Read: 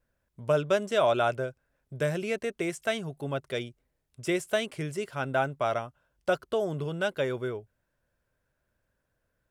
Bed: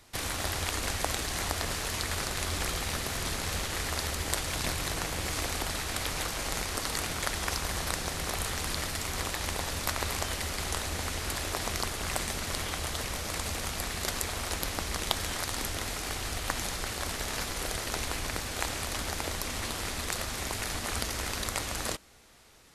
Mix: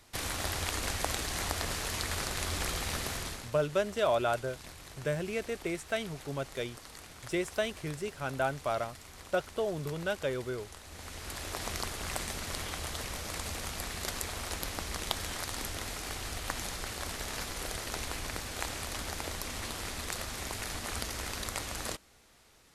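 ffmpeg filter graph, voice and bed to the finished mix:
-filter_complex "[0:a]adelay=3050,volume=-4dB[a];[1:a]volume=10.5dB,afade=t=out:st=3.08:d=0.43:silence=0.188365,afade=t=in:st=10.83:d=0.85:silence=0.237137[b];[a][b]amix=inputs=2:normalize=0"

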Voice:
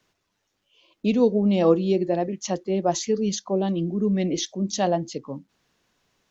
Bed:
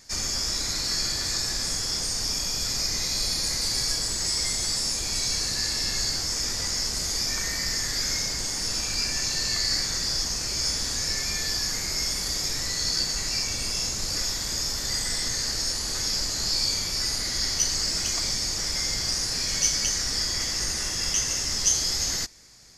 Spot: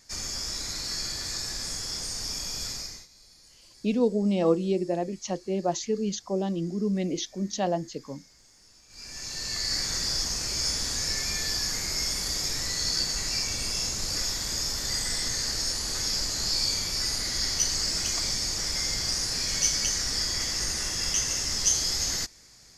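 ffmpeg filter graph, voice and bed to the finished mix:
-filter_complex "[0:a]adelay=2800,volume=-4.5dB[a];[1:a]volume=21.5dB,afade=t=out:st=2.65:d=0.42:silence=0.0707946,afade=t=in:st=8.88:d=1.06:silence=0.0446684[b];[a][b]amix=inputs=2:normalize=0"

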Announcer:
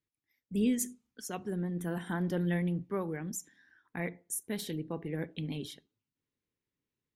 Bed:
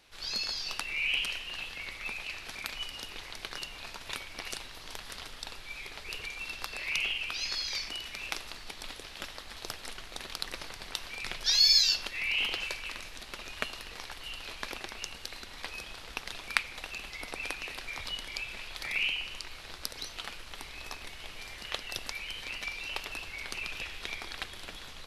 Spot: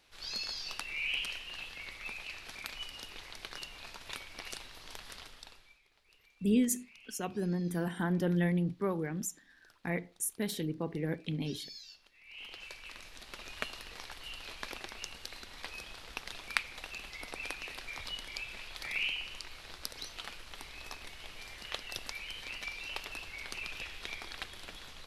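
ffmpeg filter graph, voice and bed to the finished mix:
-filter_complex "[0:a]adelay=5900,volume=1.5dB[a];[1:a]volume=18.5dB,afade=t=out:st=5.09:d=0.7:silence=0.0794328,afade=t=in:st=12.24:d=1.25:silence=0.0707946[b];[a][b]amix=inputs=2:normalize=0"

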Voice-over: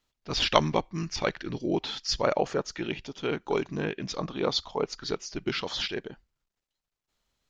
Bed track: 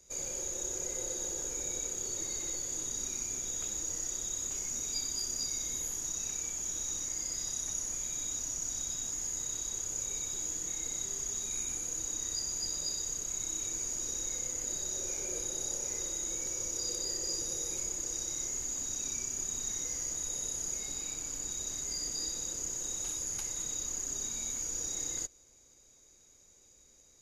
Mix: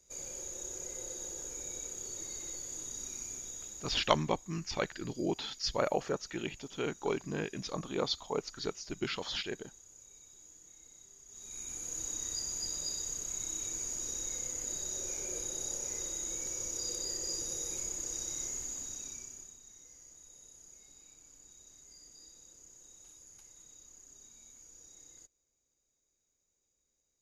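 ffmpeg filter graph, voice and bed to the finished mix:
-filter_complex "[0:a]adelay=3550,volume=-5.5dB[a];[1:a]volume=12.5dB,afade=t=out:st=3.29:d=0.95:silence=0.188365,afade=t=in:st=11.27:d=0.75:silence=0.125893,afade=t=out:st=18.46:d=1.12:silence=0.133352[b];[a][b]amix=inputs=2:normalize=0"

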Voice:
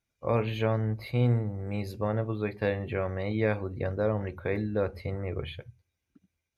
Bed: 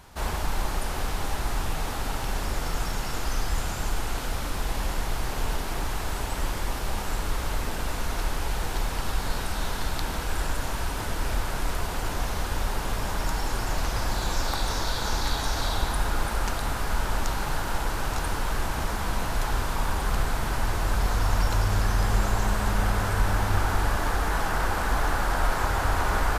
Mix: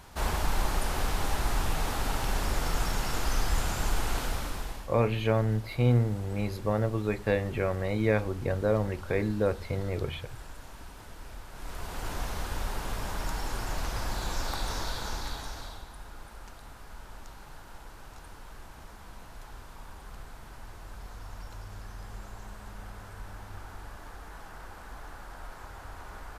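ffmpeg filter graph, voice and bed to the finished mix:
-filter_complex "[0:a]adelay=4650,volume=1.5dB[a];[1:a]volume=11dB,afade=t=out:st=4.18:d=0.7:silence=0.149624,afade=t=in:st=11.51:d=0.61:silence=0.266073,afade=t=out:st=14.8:d=1.05:silence=0.199526[b];[a][b]amix=inputs=2:normalize=0"

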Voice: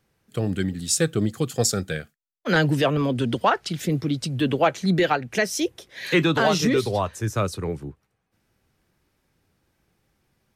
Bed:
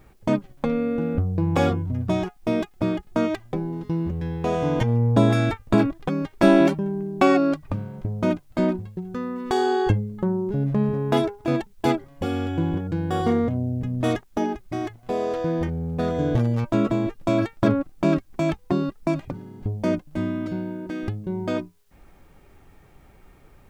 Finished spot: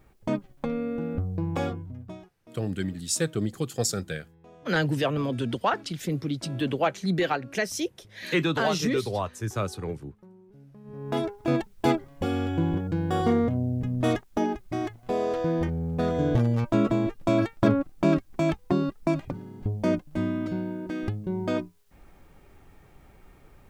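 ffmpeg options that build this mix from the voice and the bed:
-filter_complex "[0:a]adelay=2200,volume=-5dB[a];[1:a]volume=20.5dB,afade=t=out:st=1.38:d=0.91:silence=0.0794328,afade=t=in:st=10.84:d=0.66:silence=0.0473151[b];[a][b]amix=inputs=2:normalize=0"

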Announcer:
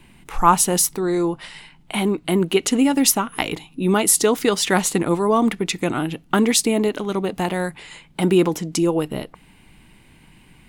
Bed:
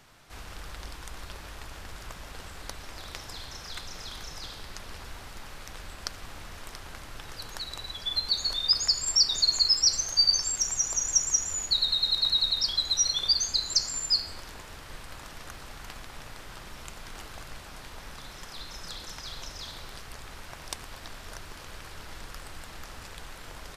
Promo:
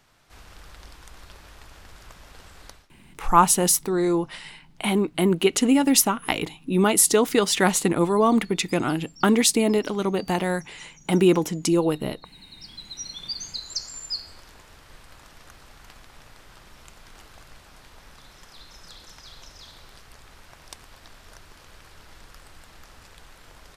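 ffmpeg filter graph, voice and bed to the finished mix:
-filter_complex "[0:a]adelay=2900,volume=-1.5dB[a];[1:a]volume=17dB,afade=t=out:st=2.66:d=0.23:silence=0.0749894,afade=t=in:st=12.38:d=1.34:silence=0.0841395[b];[a][b]amix=inputs=2:normalize=0"

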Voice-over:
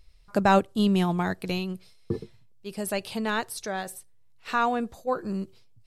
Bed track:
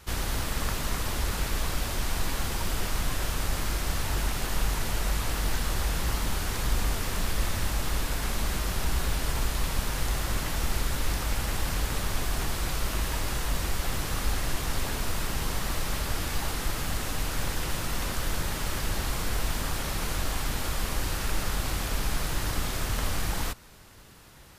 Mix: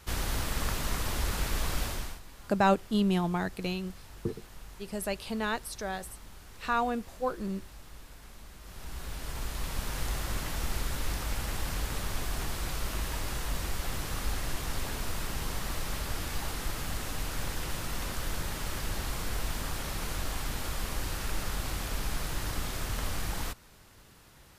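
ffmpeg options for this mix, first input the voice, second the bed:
-filter_complex "[0:a]adelay=2150,volume=-4dB[a];[1:a]volume=14dB,afade=t=out:st=1.83:d=0.37:silence=0.11885,afade=t=in:st=8.59:d=1.4:silence=0.158489[b];[a][b]amix=inputs=2:normalize=0"

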